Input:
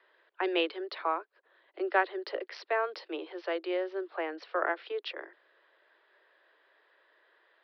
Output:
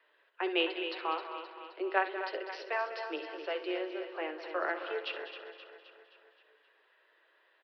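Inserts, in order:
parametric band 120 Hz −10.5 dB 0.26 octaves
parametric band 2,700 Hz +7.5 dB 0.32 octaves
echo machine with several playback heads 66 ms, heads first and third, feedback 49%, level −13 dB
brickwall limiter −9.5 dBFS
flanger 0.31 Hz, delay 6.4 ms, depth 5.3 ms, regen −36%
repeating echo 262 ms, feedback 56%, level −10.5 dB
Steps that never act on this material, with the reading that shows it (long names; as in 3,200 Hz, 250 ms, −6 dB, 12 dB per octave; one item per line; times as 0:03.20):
parametric band 120 Hz: nothing at its input below 270 Hz
brickwall limiter −9.5 dBFS: peak of its input −12.5 dBFS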